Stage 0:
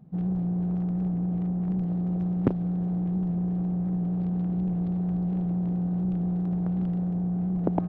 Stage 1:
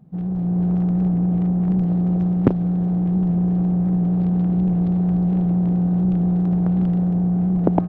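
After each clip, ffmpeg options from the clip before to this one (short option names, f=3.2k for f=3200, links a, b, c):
-af "dynaudnorm=f=300:g=3:m=6.5dB,volume=2dB"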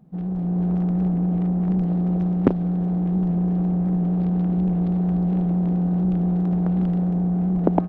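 -af "equalizer=f=110:t=o:w=0.63:g=-12.5"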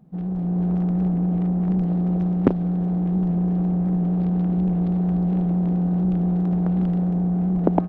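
-af anull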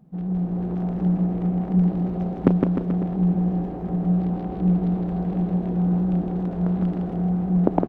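-af "aecho=1:1:160|304|433.6|550.2|655.2:0.631|0.398|0.251|0.158|0.1,volume=-1dB"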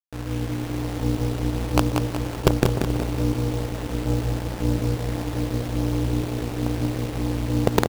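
-af "acrusher=bits=3:dc=4:mix=0:aa=0.000001,aeval=exprs='val(0)*sin(2*PI*120*n/s)':c=same,aecho=1:1:185|370|555|740|925|1110:0.531|0.25|0.117|0.0551|0.0259|0.0122,volume=3dB"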